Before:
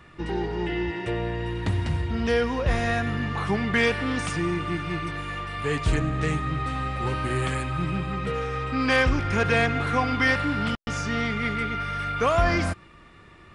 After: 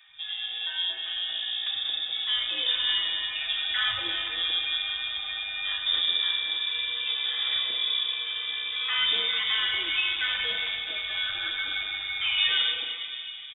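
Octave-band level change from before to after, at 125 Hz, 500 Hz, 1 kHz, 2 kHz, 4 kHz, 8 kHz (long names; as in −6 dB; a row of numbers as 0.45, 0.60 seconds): below −30 dB, −22.0 dB, −14.5 dB, −2.5 dB, +14.0 dB, below −40 dB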